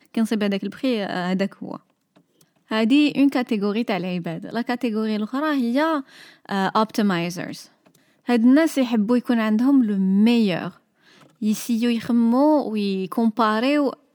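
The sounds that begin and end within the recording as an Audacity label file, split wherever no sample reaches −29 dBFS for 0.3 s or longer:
2.710000	6.010000	sound
6.490000	7.600000	sound
8.290000	10.690000	sound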